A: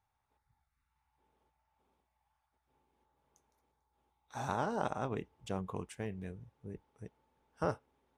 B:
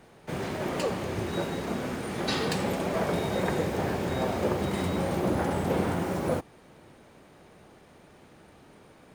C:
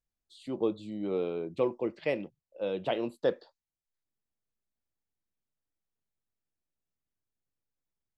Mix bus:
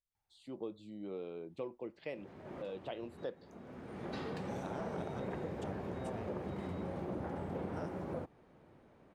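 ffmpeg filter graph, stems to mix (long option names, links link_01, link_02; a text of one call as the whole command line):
ffmpeg -i stem1.wav -i stem2.wav -i stem3.wav -filter_complex "[0:a]equalizer=frequency=1100:width_type=o:width=0.51:gain=-7,adelay=150,volume=-5dB[link_01];[1:a]lowpass=frequency=1300:poles=1,adelay=1850,volume=-8dB[link_02];[2:a]volume=-9.5dB,asplit=2[link_03][link_04];[link_04]apad=whole_len=485017[link_05];[link_02][link_05]sidechaincompress=threshold=-50dB:ratio=10:attack=9.2:release=608[link_06];[link_01][link_06][link_03]amix=inputs=3:normalize=0,acompressor=threshold=-40dB:ratio=2" out.wav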